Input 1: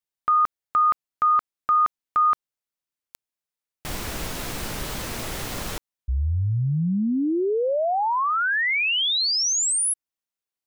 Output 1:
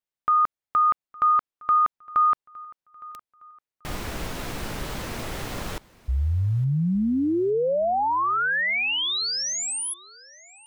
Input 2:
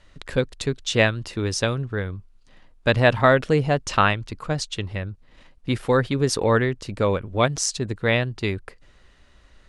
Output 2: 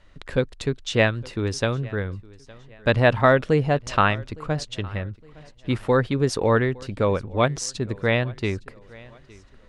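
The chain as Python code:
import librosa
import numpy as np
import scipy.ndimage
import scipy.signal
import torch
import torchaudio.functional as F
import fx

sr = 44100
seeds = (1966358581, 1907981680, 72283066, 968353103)

p1 = fx.high_shelf(x, sr, hz=4000.0, db=-7.5)
y = p1 + fx.echo_feedback(p1, sr, ms=862, feedback_pct=39, wet_db=-23, dry=0)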